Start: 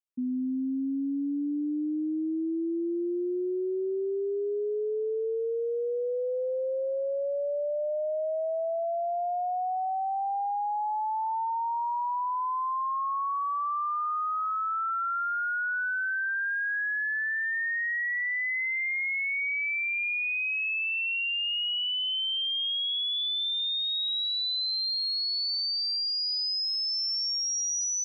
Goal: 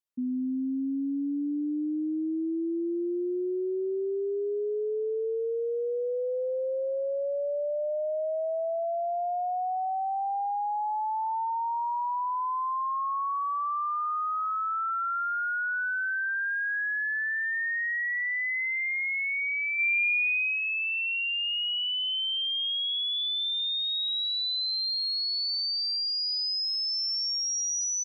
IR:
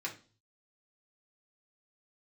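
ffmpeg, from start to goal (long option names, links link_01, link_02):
-filter_complex "[0:a]asplit=3[link_01][link_02][link_03];[link_01]afade=type=out:start_time=19.78:duration=0.02[link_04];[link_02]aecho=1:1:1.7:0.7,afade=type=in:start_time=19.78:duration=0.02,afade=type=out:start_time=20.6:duration=0.02[link_05];[link_03]afade=type=in:start_time=20.6:duration=0.02[link_06];[link_04][link_05][link_06]amix=inputs=3:normalize=0"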